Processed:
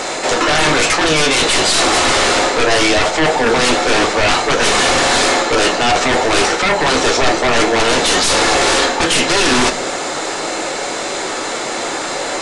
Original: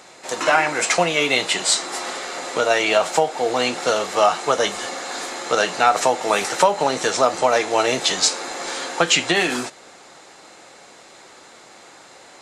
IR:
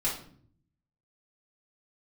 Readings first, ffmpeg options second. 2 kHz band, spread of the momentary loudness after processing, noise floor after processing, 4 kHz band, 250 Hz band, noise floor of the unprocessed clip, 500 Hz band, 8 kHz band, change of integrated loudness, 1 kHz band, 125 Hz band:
+8.5 dB, 9 LU, -22 dBFS, +9.0 dB, +10.5 dB, -46 dBFS, +5.5 dB, +7.5 dB, +6.0 dB, +5.5 dB, +11.5 dB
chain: -filter_complex "[0:a]acrossover=split=6200[a][b];[b]acompressor=threshold=-47dB:ratio=4:attack=1:release=60[c];[a][c]amix=inputs=2:normalize=0,equalizer=f=490:t=o:w=0.77:g=3.5,areverse,acompressor=threshold=-26dB:ratio=8,areverse,aeval=exprs='0.178*(cos(1*acos(clip(val(0)/0.178,-1,1)))-cos(1*PI/2))+0.0316*(cos(2*acos(clip(val(0)/0.178,-1,1)))-cos(2*PI/2))':c=same,aeval=exprs='0.168*sin(PI/2*5.01*val(0)/0.168)':c=same,asplit=2[d][e];[1:a]atrim=start_sample=2205,asetrate=61740,aresample=44100[f];[e][f]afir=irnorm=-1:irlink=0,volume=-8dB[g];[d][g]amix=inputs=2:normalize=0,aresample=22050,aresample=44100,volume=3dB"

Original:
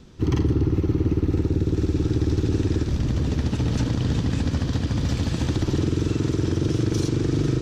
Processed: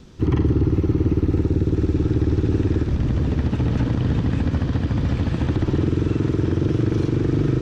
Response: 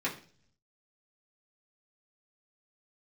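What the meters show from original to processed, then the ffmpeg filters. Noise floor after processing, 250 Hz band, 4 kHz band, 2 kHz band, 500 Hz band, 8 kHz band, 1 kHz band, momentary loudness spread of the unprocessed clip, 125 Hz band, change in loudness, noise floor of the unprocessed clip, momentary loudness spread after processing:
-28 dBFS, +2.5 dB, -5.0 dB, +1.5 dB, +2.5 dB, n/a, +2.5 dB, 2 LU, +2.5 dB, +2.5 dB, -30 dBFS, 2 LU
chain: -filter_complex "[0:a]acrossover=split=2900[a][b];[b]acompressor=threshold=-56dB:ratio=4:attack=1:release=60[c];[a][c]amix=inputs=2:normalize=0,volume=2.5dB"

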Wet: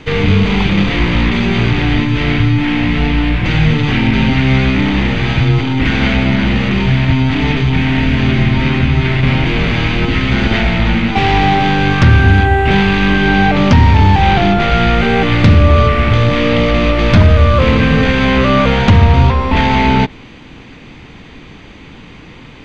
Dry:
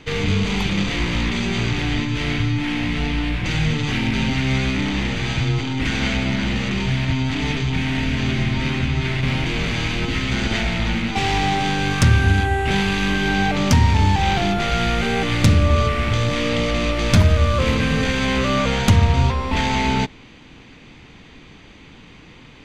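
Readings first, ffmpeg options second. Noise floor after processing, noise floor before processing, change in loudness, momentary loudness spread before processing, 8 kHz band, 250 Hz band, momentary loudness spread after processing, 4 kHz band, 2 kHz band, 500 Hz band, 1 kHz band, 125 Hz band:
-36 dBFS, -44 dBFS, +8.0 dB, 6 LU, n/a, +8.5 dB, 5 LU, +4.5 dB, +7.5 dB, +8.5 dB, +8.5 dB, +8.0 dB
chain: -filter_complex "[0:a]acrossover=split=4800[a][b];[b]acompressor=threshold=-54dB:ratio=4:attack=1:release=60[c];[a][c]amix=inputs=2:normalize=0,apsyclip=10.5dB,highshelf=f=4.3k:g=-7.5,volume=-1.5dB"

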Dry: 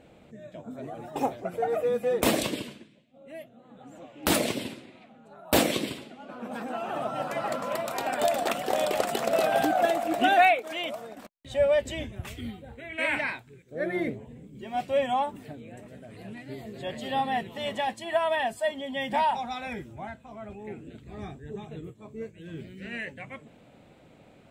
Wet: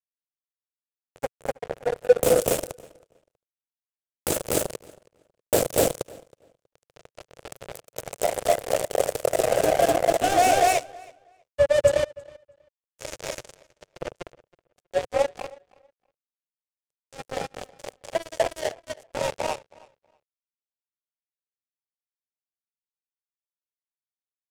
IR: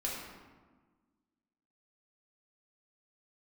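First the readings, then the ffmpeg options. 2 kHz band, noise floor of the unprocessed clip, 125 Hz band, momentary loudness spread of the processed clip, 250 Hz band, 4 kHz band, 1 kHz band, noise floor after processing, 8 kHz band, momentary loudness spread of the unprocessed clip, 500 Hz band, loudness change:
-4.0 dB, -56 dBFS, +1.0 dB, 20 LU, -4.0 dB, -1.5 dB, -0.5 dB, under -85 dBFS, +6.5 dB, 19 LU, +4.0 dB, +3.5 dB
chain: -filter_complex "[0:a]asplit=2[a][b];[b]adelay=42,volume=-13dB[c];[a][c]amix=inputs=2:normalize=0,asplit=2[d][e];[e]aecho=0:1:198.3|247.8:0.316|1[f];[d][f]amix=inputs=2:normalize=0,acrusher=bits=2:mix=0:aa=0.5,asoftclip=type=tanh:threshold=-17dB,equalizer=f=125:t=o:w=1:g=5,equalizer=f=250:t=o:w=1:g=-9,equalizer=f=500:t=o:w=1:g=11,equalizer=f=1k:t=o:w=1:g=-6,equalizer=f=2k:t=o:w=1:g=-5,equalizer=f=4k:t=o:w=1:g=-6,equalizer=f=8k:t=o:w=1:g=5,asplit=2[g][h];[h]adelay=321,lowpass=f=4.8k:p=1,volume=-23dB,asplit=2[i][j];[j]adelay=321,lowpass=f=4.8k:p=1,volume=0.19[k];[i][k]amix=inputs=2:normalize=0[l];[g][l]amix=inputs=2:normalize=0,volume=4dB"

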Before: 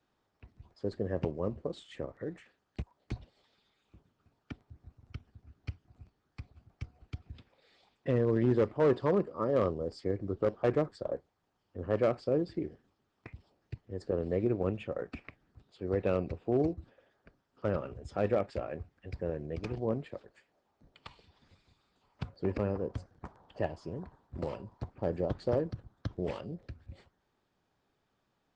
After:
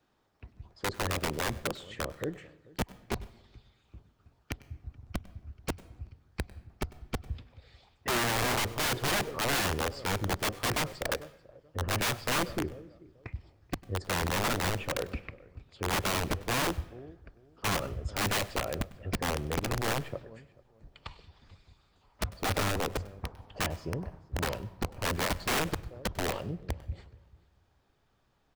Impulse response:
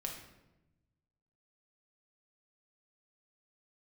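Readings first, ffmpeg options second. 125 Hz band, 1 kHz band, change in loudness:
+1.5 dB, +8.5 dB, +1.0 dB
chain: -filter_complex "[0:a]acontrast=84,asplit=2[a][b];[b]aecho=0:1:437|874:0.0708|0.0135[c];[a][c]amix=inputs=2:normalize=0,asubboost=boost=2.5:cutoff=110,aeval=exprs='(mod(11.2*val(0)+1,2)-1)/11.2':c=same,asplit=2[d][e];[1:a]atrim=start_sample=2205,adelay=98[f];[e][f]afir=irnorm=-1:irlink=0,volume=-18.5dB[g];[d][g]amix=inputs=2:normalize=0,volume=-2.5dB"

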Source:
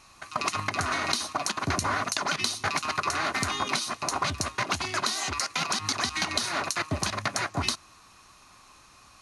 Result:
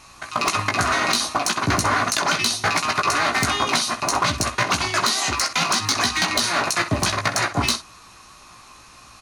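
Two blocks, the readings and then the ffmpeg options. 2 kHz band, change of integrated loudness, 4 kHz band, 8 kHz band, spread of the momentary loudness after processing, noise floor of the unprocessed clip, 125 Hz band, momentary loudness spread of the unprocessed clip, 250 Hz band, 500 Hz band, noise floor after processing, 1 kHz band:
+8.0 dB, +8.0 dB, +7.5 dB, +7.5 dB, 3 LU, -55 dBFS, +7.5 dB, 3 LU, +8.0 dB, +8.0 dB, -47 dBFS, +8.0 dB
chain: -af "aecho=1:1:17|64:0.531|0.237,asoftclip=type=hard:threshold=-19dB,volume=7dB"

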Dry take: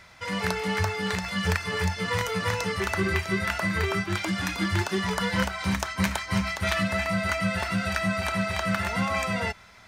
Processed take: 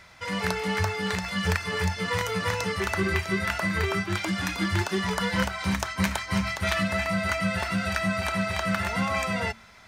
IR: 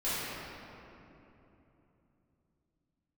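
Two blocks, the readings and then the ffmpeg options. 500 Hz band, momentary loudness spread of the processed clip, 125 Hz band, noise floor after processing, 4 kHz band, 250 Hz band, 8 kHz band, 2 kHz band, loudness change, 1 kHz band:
0.0 dB, 2 LU, -0.5 dB, -50 dBFS, 0.0 dB, 0.0 dB, 0.0 dB, 0.0 dB, 0.0 dB, 0.0 dB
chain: -af "bandreject=f=112.2:t=h:w=4,bandreject=f=224.4:t=h:w=4"

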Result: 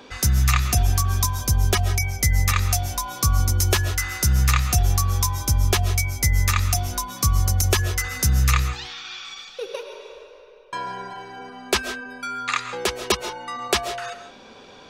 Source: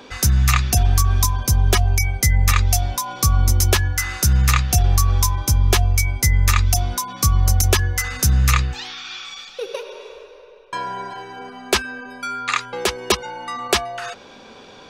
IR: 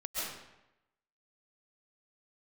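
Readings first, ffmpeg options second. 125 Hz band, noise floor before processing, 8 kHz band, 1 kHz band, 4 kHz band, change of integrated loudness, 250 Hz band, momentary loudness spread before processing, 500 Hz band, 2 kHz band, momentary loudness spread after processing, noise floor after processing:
-3.0 dB, -43 dBFS, -3.0 dB, -3.0 dB, -2.5 dB, -3.0 dB, -3.0 dB, 15 LU, -2.5 dB, -2.5 dB, 14 LU, -46 dBFS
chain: -filter_complex "[0:a]asplit=2[a][b];[1:a]atrim=start_sample=2205,afade=t=out:st=0.23:d=0.01,atrim=end_sample=10584[c];[b][c]afir=irnorm=-1:irlink=0,volume=-10.5dB[d];[a][d]amix=inputs=2:normalize=0,volume=-4.5dB"

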